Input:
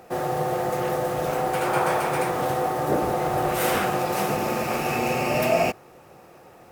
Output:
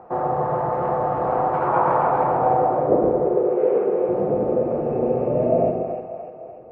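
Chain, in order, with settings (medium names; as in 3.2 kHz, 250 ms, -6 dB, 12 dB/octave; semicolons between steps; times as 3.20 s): low-pass sweep 1 kHz -> 490 Hz, 2.02–3.06 s; 3.25–4.09 s: cabinet simulation 360–3400 Hz, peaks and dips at 410 Hz +10 dB, 680 Hz -8 dB, 2.4 kHz +8 dB; two-band feedback delay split 620 Hz, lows 117 ms, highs 296 ms, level -5 dB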